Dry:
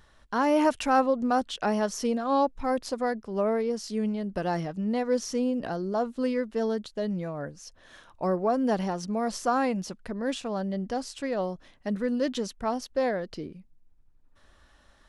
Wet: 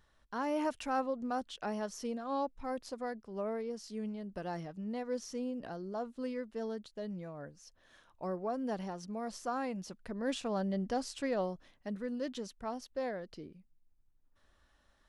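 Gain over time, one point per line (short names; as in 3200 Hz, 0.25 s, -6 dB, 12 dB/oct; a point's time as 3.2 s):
9.67 s -11 dB
10.45 s -3.5 dB
11.29 s -3.5 dB
11.99 s -10.5 dB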